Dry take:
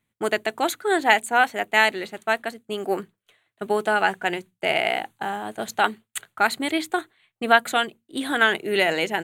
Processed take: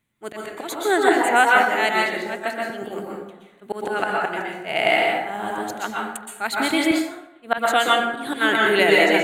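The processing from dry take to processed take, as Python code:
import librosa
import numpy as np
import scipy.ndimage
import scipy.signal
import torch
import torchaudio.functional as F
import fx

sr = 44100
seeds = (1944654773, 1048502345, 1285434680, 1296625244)

y = fx.auto_swell(x, sr, attack_ms=172.0)
y = fx.rev_plate(y, sr, seeds[0], rt60_s=0.98, hf_ratio=0.5, predelay_ms=110, drr_db=-3.0)
y = fx.band_widen(y, sr, depth_pct=40, at=(6.91, 7.58))
y = y * 10.0 ** (1.5 / 20.0)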